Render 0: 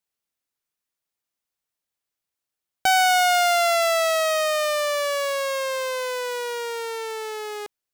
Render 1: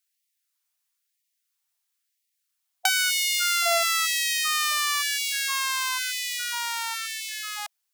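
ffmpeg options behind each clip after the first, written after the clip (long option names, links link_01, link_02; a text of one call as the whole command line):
ffmpeg -i in.wav -af "acompressor=threshold=-22dB:ratio=6,highshelf=frequency=2500:gain=7.5,afftfilt=real='re*gte(b*sr/1024,640*pow(1800/640,0.5+0.5*sin(2*PI*1*pts/sr)))':imag='im*gte(b*sr/1024,640*pow(1800/640,0.5+0.5*sin(2*PI*1*pts/sr)))':win_size=1024:overlap=0.75,volume=1dB" out.wav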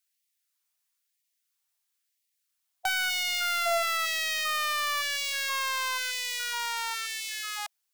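ffmpeg -i in.wav -af "asoftclip=type=hard:threshold=-21dB,volume=-1dB" out.wav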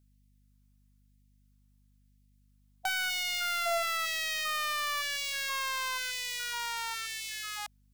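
ffmpeg -i in.wav -af "aeval=exprs='val(0)+0.000891*(sin(2*PI*50*n/s)+sin(2*PI*2*50*n/s)/2+sin(2*PI*3*50*n/s)/3+sin(2*PI*4*50*n/s)/4+sin(2*PI*5*50*n/s)/5)':channel_layout=same,volume=-3.5dB" out.wav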